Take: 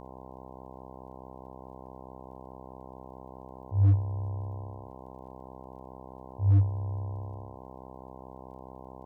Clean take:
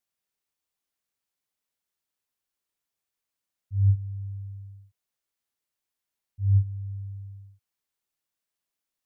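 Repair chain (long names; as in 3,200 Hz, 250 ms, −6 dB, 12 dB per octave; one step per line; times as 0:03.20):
clipped peaks rebuilt −17 dBFS
click removal
hum removal 64.7 Hz, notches 16
echo removal 71 ms −16.5 dB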